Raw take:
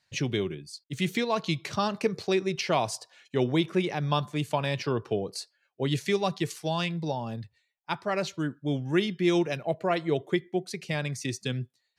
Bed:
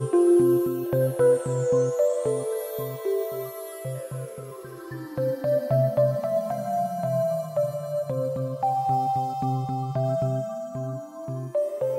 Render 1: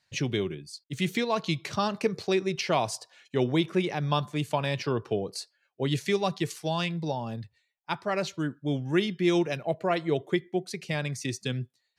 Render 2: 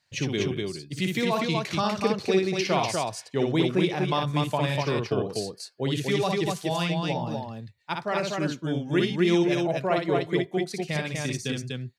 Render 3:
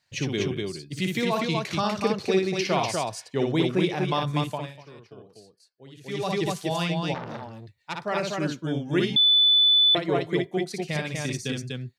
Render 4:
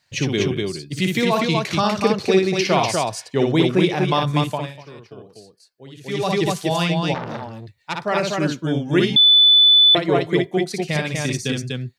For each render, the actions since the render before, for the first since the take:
nothing audible
loudspeakers at several distances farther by 20 m -4 dB, 84 m -3 dB
4.38–6.36 dip -20 dB, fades 0.36 s; 7.14–8.03 core saturation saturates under 2700 Hz; 9.16–9.95 bleep 3490 Hz -15 dBFS
gain +6.5 dB

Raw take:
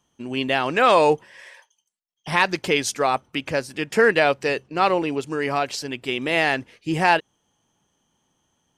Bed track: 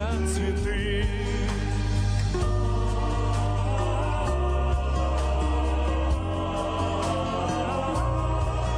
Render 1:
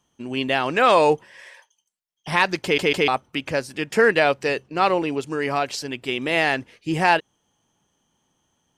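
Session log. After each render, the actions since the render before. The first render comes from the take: 2.63 stutter in place 0.15 s, 3 plays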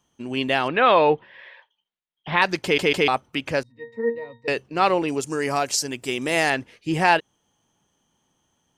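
0.68–2.42 elliptic low-pass 3800 Hz, stop band 80 dB; 3.63–4.48 octave resonator A#, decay 0.26 s; 5.08–6.5 resonant high shelf 4800 Hz +9 dB, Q 1.5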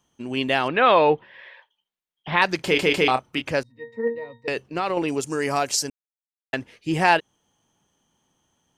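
2.56–3.42 doubler 31 ms -9 dB; 4.07–4.97 compressor, threshold -20 dBFS; 5.9–6.53 mute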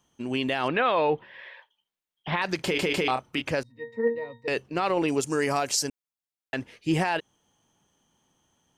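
limiter -14.5 dBFS, peak gain reduction 11.5 dB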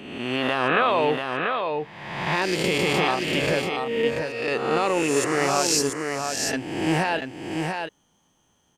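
spectral swells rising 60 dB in 1.14 s; on a send: echo 0.688 s -5 dB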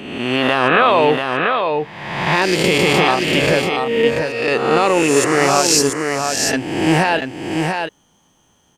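gain +8 dB; limiter -2 dBFS, peak gain reduction 2 dB

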